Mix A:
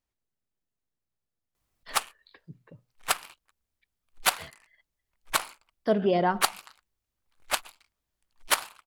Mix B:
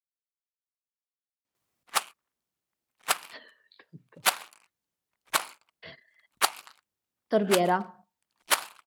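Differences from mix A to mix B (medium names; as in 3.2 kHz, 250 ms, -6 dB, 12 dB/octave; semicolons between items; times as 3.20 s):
speech: entry +1.45 s; master: add high-pass 150 Hz 12 dB/octave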